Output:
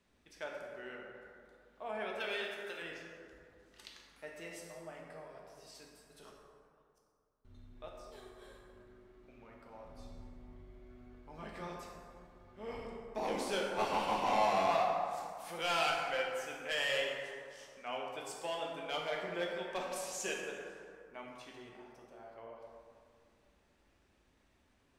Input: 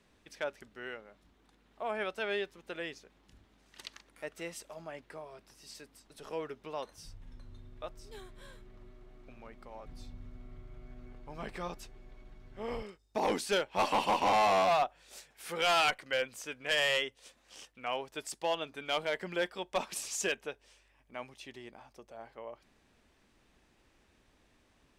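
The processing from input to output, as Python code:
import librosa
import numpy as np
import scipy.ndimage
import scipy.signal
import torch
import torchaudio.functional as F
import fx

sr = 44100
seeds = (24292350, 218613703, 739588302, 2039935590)

y = fx.tilt_eq(x, sr, slope=3.5, at=(2.2, 2.82))
y = fx.gate_flip(y, sr, shuts_db=-45.0, range_db=-35, at=(6.3, 7.45))
y = fx.rev_plate(y, sr, seeds[0], rt60_s=2.3, hf_ratio=0.45, predelay_ms=0, drr_db=-2.0)
y = F.gain(torch.from_numpy(y), -8.0).numpy()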